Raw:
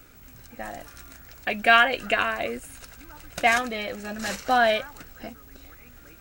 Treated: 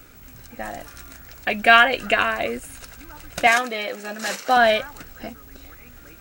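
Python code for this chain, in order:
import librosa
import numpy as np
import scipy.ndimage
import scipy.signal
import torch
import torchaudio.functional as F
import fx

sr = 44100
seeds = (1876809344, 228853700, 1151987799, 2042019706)

y = fx.highpass(x, sr, hz=280.0, slope=12, at=(3.47, 4.57))
y = y * librosa.db_to_amplitude(4.0)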